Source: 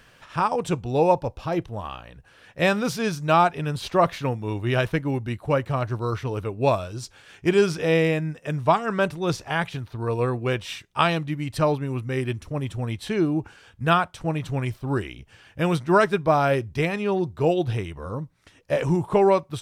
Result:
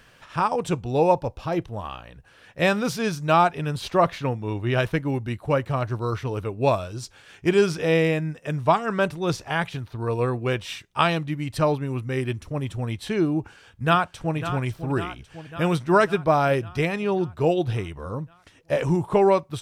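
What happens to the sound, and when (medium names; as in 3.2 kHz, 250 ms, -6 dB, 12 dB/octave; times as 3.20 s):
4.01–4.76 s: low-pass 7.7 kHz -> 4.5 kHz 6 dB/octave
13.36–14.36 s: echo throw 550 ms, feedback 65%, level -11 dB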